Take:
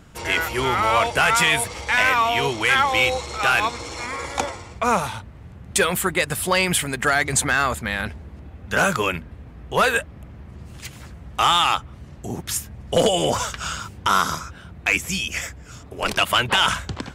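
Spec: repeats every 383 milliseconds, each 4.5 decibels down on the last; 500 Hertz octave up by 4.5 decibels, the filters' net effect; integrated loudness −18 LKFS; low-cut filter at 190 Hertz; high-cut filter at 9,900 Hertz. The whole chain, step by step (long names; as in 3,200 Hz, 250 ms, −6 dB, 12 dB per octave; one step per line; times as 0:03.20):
high-pass filter 190 Hz
low-pass filter 9,900 Hz
parametric band 500 Hz +5.5 dB
repeating echo 383 ms, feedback 60%, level −4.5 dB
level +0.5 dB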